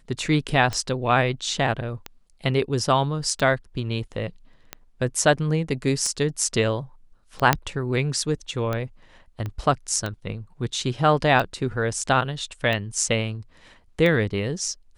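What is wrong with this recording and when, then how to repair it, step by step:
scratch tick 45 rpm −14 dBFS
0:07.53: click −2 dBFS
0:09.46: click −19 dBFS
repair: click removal

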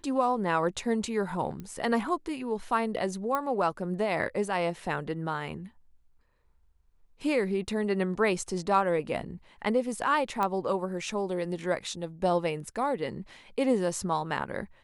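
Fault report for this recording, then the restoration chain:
0:01.60: click −27 dBFS
0:03.35: click −16 dBFS
0:10.43: click −16 dBFS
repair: click removal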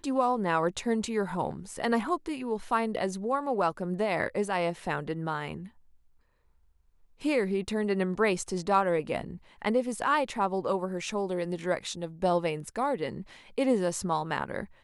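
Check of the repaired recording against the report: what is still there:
0:01.60: click

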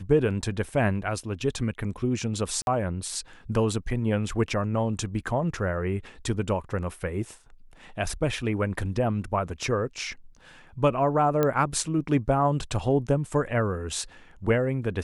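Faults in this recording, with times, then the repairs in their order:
0:02.62–0:02.67: drop-out 51 ms
0:11.43: click −11 dBFS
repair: click removal
repair the gap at 0:02.62, 51 ms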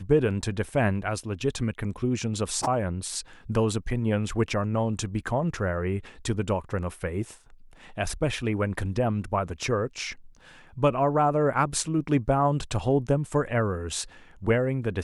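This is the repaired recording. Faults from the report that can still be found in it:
none of them is left

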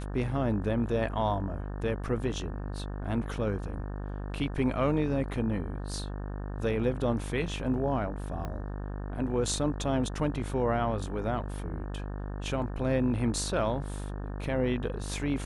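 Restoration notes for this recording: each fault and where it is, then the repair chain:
mains buzz 50 Hz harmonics 36 −36 dBFS
0:08.45: click −23 dBFS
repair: click removal
hum removal 50 Hz, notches 36

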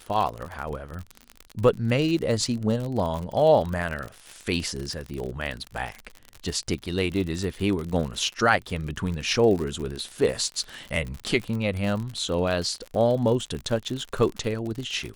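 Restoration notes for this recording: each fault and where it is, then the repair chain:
surface crackle 55 per second −29 dBFS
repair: click removal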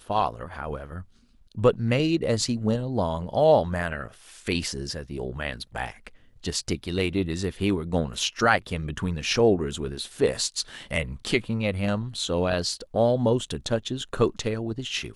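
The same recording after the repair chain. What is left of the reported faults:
none of them is left

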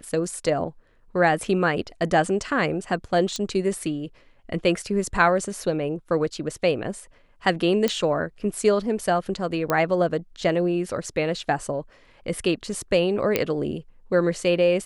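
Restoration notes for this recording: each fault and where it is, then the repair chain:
0:03.36: click −16 dBFS
0:07.88: click −8 dBFS
0:09.70: click −9 dBFS
0:13.36: click −6 dBFS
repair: click removal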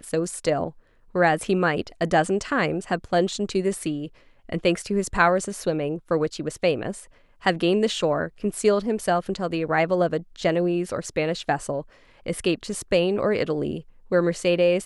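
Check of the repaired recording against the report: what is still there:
none of them is left

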